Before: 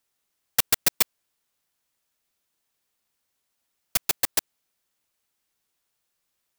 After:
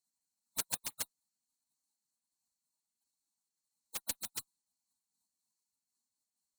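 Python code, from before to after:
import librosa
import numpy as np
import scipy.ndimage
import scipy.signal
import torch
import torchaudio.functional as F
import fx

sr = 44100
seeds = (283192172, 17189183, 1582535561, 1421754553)

p1 = 10.0 ** (-18.0 / 20.0) * (np.abs((x / 10.0 ** (-18.0 / 20.0) + 3.0) % 4.0 - 2.0) - 1.0)
p2 = x + (p1 * 10.0 ** (-4.5 / 20.0))
p3 = fx.curve_eq(p2, sr, hz=(110.0, 260.0, 370.0, 610.0, 870.0, 1800.0, 3300.0, 4800.0, 12000.0), db=(0, -12, 7, 5, -7, 13, 13, -27, -3))
p4 = fx.spec_gate(p3, sr, threshold_db=-30, keep='weak')
p5 = fx.cheby_harmonics(p4, sr, harmonics=(7,), levels_db=(-11,), full_scale_db=-25.5)
p6 = fx.am_noise(p5, sr, seeds[0], hz=5.7, depth_pct=60)
y = p6 * 10.0 ** (11.5 / 20.0)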